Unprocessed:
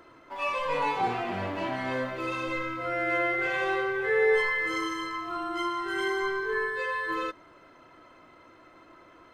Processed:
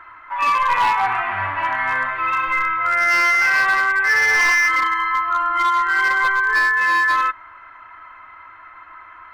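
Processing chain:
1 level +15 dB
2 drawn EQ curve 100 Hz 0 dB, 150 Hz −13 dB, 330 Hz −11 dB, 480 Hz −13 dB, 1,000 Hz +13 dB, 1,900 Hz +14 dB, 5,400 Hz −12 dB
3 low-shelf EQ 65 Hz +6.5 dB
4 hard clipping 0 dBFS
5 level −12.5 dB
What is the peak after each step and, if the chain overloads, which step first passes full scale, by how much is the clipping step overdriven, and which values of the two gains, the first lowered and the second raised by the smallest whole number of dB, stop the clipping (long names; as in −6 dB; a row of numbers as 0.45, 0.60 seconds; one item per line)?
+2.5, +8.5, +8.5, 0.0, −12.5 dBFS
step 1, 8.5 dB
step 1 +6 dB, step 5 −3.5 dB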